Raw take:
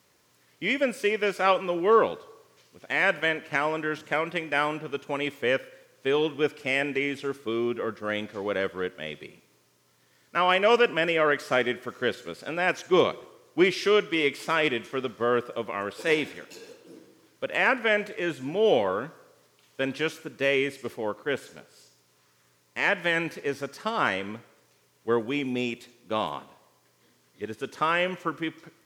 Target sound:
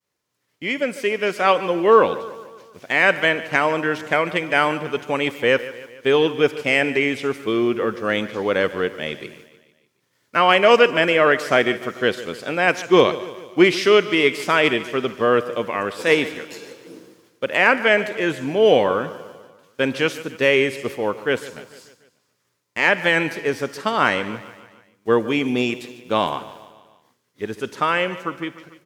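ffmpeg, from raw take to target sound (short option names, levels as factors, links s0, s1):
-filter_complex "[0:a]agate=range=0.0224:threshold=0.002:ratio=3:detection=peak,dynaudnorm=f=210:g=13:m=2.24,asplit=2[s0][s1];[s1]aecho=0:1:147|294|441|588|735:0.15|0.0823|0.0453|0.0249|0.0137[s2];[s0][s2]amix=inputs=2:normalize=0,volume=1.19"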